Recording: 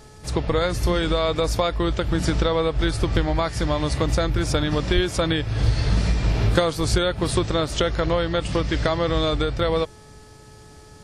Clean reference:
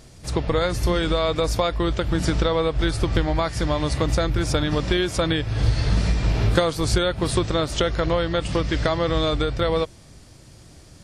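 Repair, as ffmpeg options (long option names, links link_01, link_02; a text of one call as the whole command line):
ffmpeg -i in.wav -filter_complex "[0:a]bandreject=frequency=428.6:width_type=h:width=4,bandreject=frequency=857.2:width_type=h:width=4,bandreject=frequency=1285.8:width_type=h:width=4,bandreject=frequency=1714.4:width_type=h:width=4,asplit=3[link_01][link_02][link_03];[link_01]afade=type=out:start_time=4.94:duration=0.02[link_04];[link_02]highpass=frequency=140:width=0.5412,highpass=frequency=140:width=1.3066,afade=type=in:start_time=4.94:duration=0.02,afade=type=out:start_time=5.06:duration=0.02[link_05];[link_03]afade=type=in:start_time=5.06:duration=0.02[link_06];[link_04][link_05][link_06]amix=inputs=3:normalize=0" out.wav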